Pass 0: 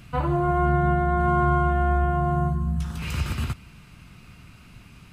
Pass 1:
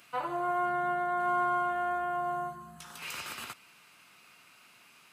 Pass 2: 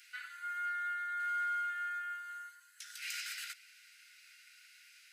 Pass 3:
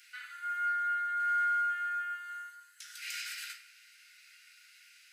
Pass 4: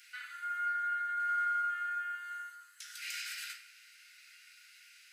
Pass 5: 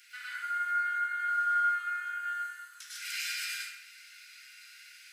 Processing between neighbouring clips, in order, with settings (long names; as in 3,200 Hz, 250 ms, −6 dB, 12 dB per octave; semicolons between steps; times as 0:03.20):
high-pass filter 570 Hz 12 dB per octave; high-shelf EQ 8,200 Hz +5.5 dB; level −4 dB
Chebyshev high-pass with heavy ripple 1,400 Hz, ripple 6 dB; level +3 dB
rectangular room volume 140 cubic metres, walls mixed, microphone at 0.57 metres
in parallel at −2 dB: downward compressor, threshold −40 dBFS, peak gain reduction 11.5 dB; on the sum: flanger 0.82 Hz, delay 4.8 ms, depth 5 ms, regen −88%
dense smooth reverb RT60 0.54 s, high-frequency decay 0.8×, pre-delay 90 ms, DRR −4.5 dB